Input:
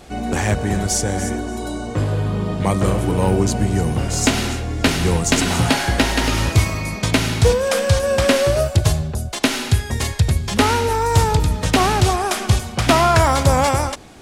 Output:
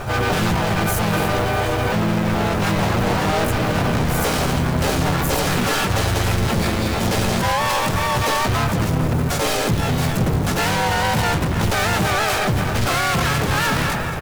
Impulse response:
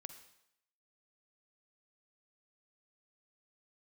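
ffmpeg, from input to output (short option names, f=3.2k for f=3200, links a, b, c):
-filter_complex "[0:a]lowpass=8.6k,aecho=1:1:2.6:0.67,asoftclip=type=tanh:threshold=-13.5dB,asetrate=72056,aresample=44100,atempo=0.612027,highshelf=f=2.9k:g=-11,aecho=1:1:215|430|645|860|1075:0.178|0.096|0.0519|0.028|0.0151,acontrast=69,volume=24dB,asoftclip=hard,volume=-24dB,asplit=4[a][b][c][d];[b]asetrate=29433,aresample=44100,atempo=1.49831,volume=-3dB[e];[c]asetrate=55563,aresample=44100,atempo=0.793701,volume=0dB[f];[d]asetrate=88200,aresample=44100,atempo=0.5,volume=-9dB[g];[a][e][f][g]amix=inputs=4:normalize=0,acrusher=bits=5:mode=log:mix=0:aa=0.000001,volume=1.5dB"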